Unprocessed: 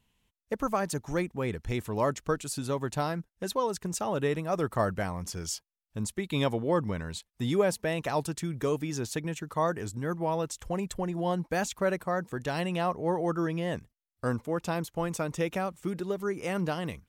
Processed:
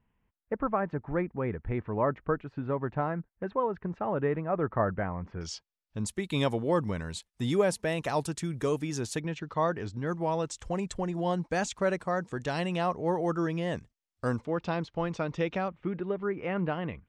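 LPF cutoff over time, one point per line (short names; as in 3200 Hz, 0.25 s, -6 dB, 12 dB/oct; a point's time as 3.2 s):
LPF 24 dB/oct
2000 Hz
from 5.41 s 5500 Hz
from 6.06 s 11000 Hz
from 9.2 s 5000 Hz
from 10.07 s 8200 Hz
from 14.45 s 4600 Hz
from 15.68 s 2700 Hz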